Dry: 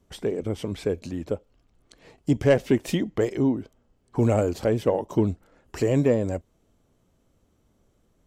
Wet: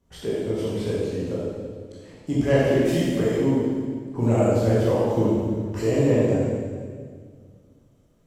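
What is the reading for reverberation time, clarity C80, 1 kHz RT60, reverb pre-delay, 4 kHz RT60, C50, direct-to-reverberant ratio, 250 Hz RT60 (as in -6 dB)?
1.9 s, -0.5 dB, 1.7 s, 15 ms, 1.7 s, -3.0 dB, -8.5 dB, 2.4 s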